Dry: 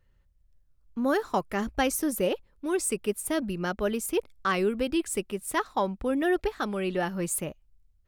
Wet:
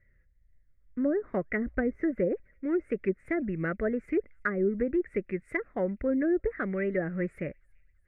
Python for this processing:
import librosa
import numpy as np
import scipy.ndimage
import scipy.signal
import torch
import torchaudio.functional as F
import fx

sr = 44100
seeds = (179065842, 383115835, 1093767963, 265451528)

y = fx.wow_flutter(x, sr, seeds[0], rate_hz=2.1, depth_cents=130.0)
y = fx.curve_eq(y, sr, hz=(590.0, 900.0, 2000.0, 3100.0), db=(0, -18, 13, -22))
y = fx.env_lowpass_down(y, sr, base_hz=540.0, full_db=-21.5)
y = fx.echo_wet_highpass(y, sr, ms=337, feedback_pct=52, hz=4000.0, wet_db=-20.5)